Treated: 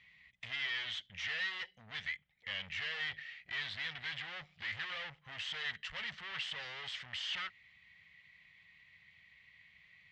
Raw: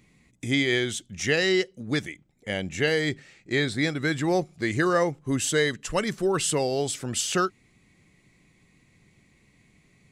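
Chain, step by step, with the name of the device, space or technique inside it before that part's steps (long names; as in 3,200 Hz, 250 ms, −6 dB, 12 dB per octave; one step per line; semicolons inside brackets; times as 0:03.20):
scooped metal amplifier (tube saturation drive 40 dB, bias 0.7; loudspeaker in its box 80–3,900 Hz, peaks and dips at 120 Hz −6 dB, 370 Hz −5 dB, 1,900 Hz +10 dB, 3,100 Hz +7 dB; guitar amp tone stack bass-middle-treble 10-0-10)
level +5.5 dB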